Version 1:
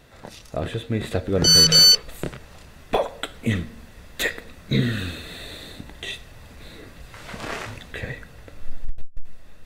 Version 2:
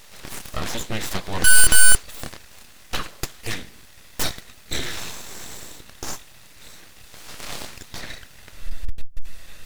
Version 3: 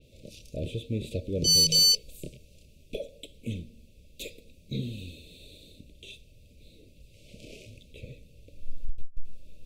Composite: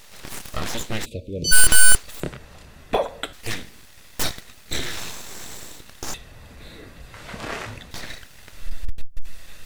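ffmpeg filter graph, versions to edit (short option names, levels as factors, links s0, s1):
-filter_complex "[0:a]asplit=2[s0][s1];[1:a]asplit=4[s2][s3][s4][s5];[s2]atrim=end=1.06[s6];[2:a]atrim=start=1.04:end=1.53[s7];[s3]atrim=start=1.51:end=2.202[s8];[s0]atrim=start=2.198:end=3.332[s9];[s4]atrim=start=3.328:end=6.142[s10];[s1]atrim=start=6.138:end=7.912[s11];[s5]atrim=start=7.908[s12];[s6][s7]acrossfade=d=0.02:c1=tri:c2=tri[s13];[s13][s8]acrossfade=d=0.02:c1=tri:c2=tri[s14];[s14][s9]acrossfade=d=0.004:c1=hsin:c2=hsin[s15];[s15][s10]acrossfade=d=0.004:c1=hsin:c2=hsin[s16];[s16][s11]acrossfade=d=0.004:c1=hsin:c2=hsin[s17];[s17][s12]acrossfade=d=0.004:c1=hsin:c2=hsin"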